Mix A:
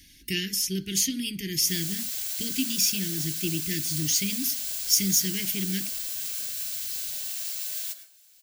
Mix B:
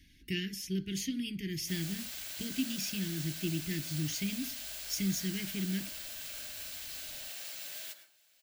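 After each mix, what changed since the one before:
speech -5.5 dB; master: add tone controls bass +3 dB, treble -12 dB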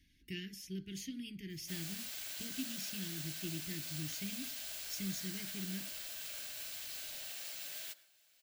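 speech -8.5 dB; background: send -10.0 dB

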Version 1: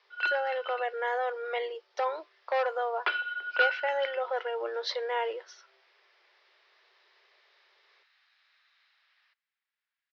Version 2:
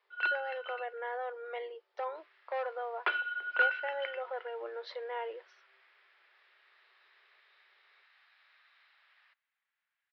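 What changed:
speech -6.5 dB; second sound +6.0 dB; master: add distance through air 250 m

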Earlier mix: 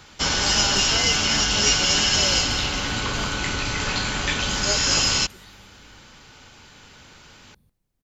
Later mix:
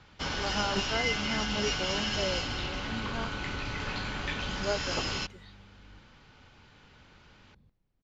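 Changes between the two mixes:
first sound -8.0 dB; master: add distance through air 170 m

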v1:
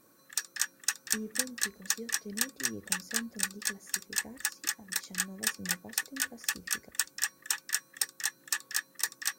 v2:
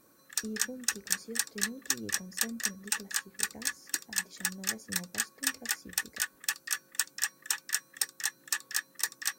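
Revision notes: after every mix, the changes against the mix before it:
speech: entry -0.70 s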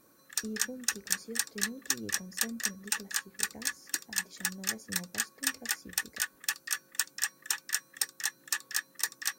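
master: add band-stop 8 kHz, Q 25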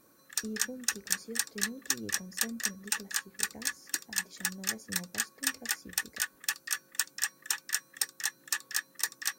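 no change

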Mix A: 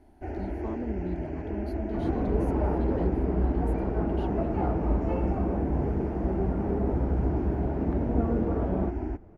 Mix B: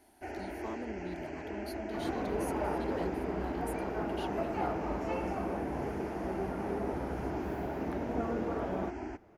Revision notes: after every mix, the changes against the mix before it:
master: add tilt EQ +4 dB/octave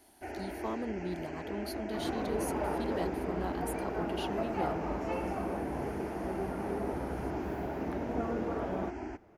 speech +5.5 dB

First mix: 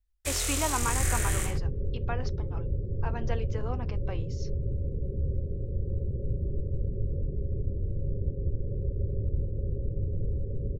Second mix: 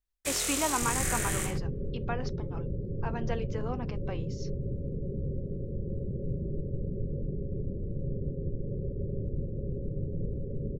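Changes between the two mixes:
second sound: add bass shelf 150 Hz +7 dB; master: add resonant low shelf 120 Hz -11 dB, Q 1.5

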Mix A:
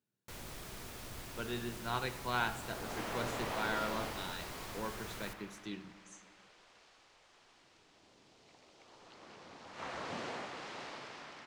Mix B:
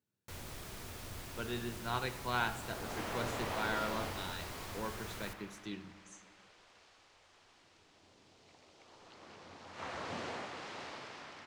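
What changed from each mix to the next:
master: add peaking EQ 89 Hz +10 dB 0.24 oct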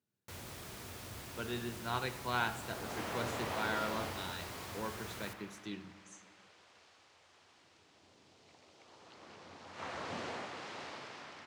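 master: add high-pass 70 Hz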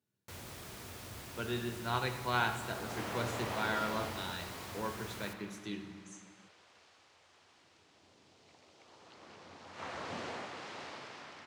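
speech: send +9.0 dB

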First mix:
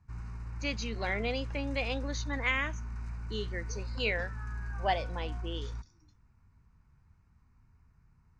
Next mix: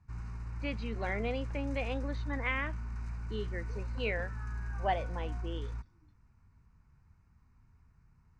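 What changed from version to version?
speech: add distance through air 390 m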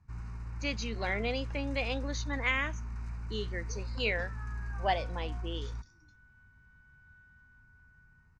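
speech: remove distance through air 390 m; second sound: entry +2.70 s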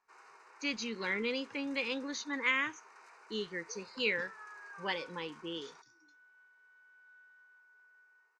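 speech: add Butterworth band-stop 680 Hz, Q 2; first sound: add elliptic high-pass 410 Hz, stop band 60 dB

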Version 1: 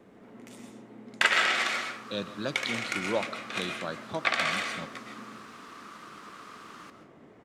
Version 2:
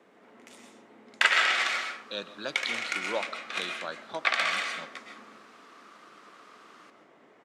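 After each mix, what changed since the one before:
second sound -7.0 dB; master: add frequency weighting A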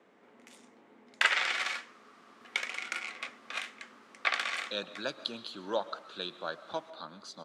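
speech: entry +2.60 s; first sound: send off; second sound -6.0 dB

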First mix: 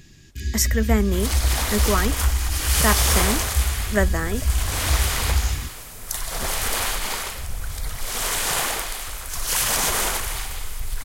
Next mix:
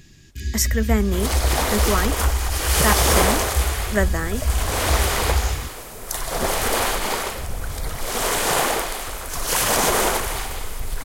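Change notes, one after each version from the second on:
second sound: add peaking EQ 410 Hz +10 dB 2.9 oct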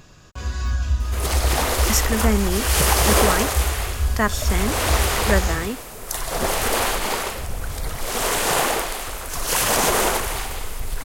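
speech: entry +1.35 s; first sound: remove brick-wall FIR band-stop 410–1600 Hz; master: remove band-stop 2.7 kHz, Q 29

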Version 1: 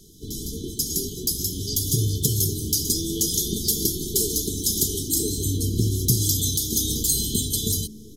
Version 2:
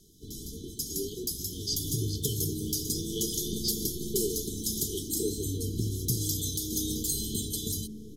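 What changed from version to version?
first sound -9.0 dB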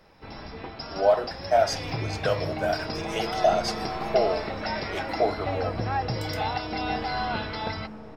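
first sound: add brick-wall FIR low-pass 5.6 kHz; master: remove brick-wall FIR band-stop 450–3000 Hz

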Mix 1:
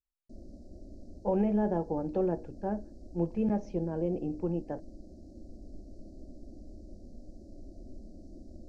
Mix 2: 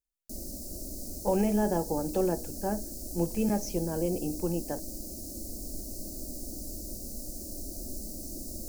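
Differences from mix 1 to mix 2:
background +5.5 dB; master: remove tape spacing loss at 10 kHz 38 dB

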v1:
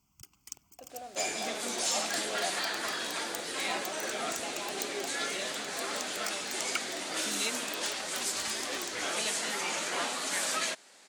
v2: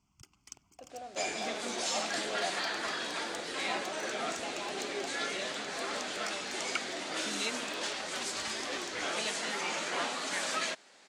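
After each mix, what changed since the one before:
master: add distance through air 64 m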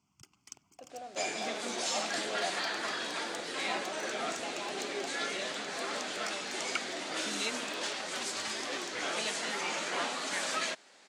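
master: add high-pass 110 Hz 12 dB/octave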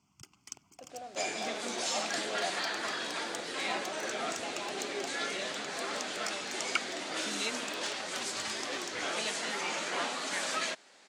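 first sound +4.0 dB

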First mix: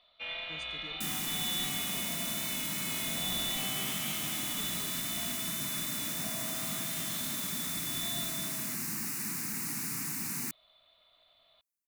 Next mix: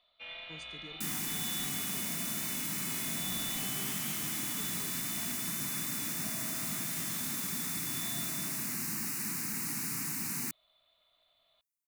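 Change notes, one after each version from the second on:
first sound -6.0 dB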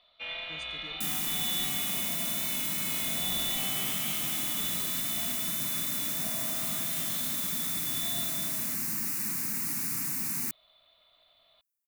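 first sound +7.0 dB; master: add treble shelf 12 kHz +7.5 dB

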